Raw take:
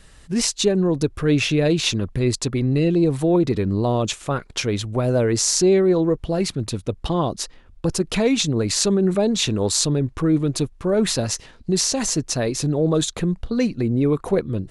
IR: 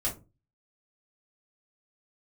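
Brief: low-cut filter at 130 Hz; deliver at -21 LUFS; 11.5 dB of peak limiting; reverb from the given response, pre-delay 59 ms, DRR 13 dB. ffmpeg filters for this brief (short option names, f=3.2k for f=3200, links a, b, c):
-filter_complex "[0:a]highpass=130,alimiter=limit=-12.5dB:level=0:latency=1,asplit=2[a][b];[1:a]atrim=start_sample=2205,adelay=59[c];[b][c]afir=irnorm=-1:irlink=0,volume=-18.5dB[d];[a][d]amix=inputs=2:normalize=0,volume=1.5dB"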